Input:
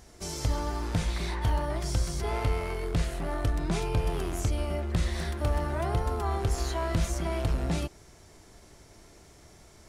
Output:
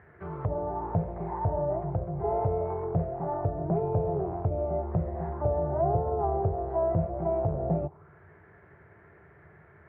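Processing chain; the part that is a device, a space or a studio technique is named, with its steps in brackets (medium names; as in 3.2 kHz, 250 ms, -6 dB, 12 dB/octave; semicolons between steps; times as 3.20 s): envelope filter bass rig (touch-sensitive low-pass 660–1800 Hz down, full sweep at -25 dBFS; cabinet simulation 73–2400 Hz, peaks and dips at 88 Hz +6 dB, 150 Hz +10 dB, 260 Hz -9 dB, 410 Hz +6 dB); trim -3 dB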